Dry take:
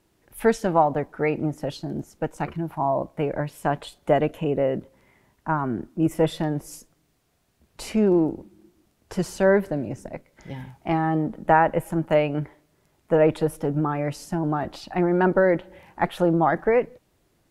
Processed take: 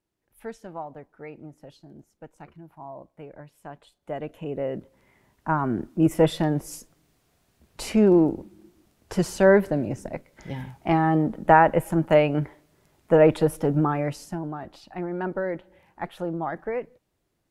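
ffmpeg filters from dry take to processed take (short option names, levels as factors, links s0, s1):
-af "volume=1.26,afade=t=in:st=3.98:d=0.68:silence=0.281838,afade=t=in:st=4.66:d=1.26:silence=0.398107,afade=t=out:st=13.82:d=0.7:silence=0.266073"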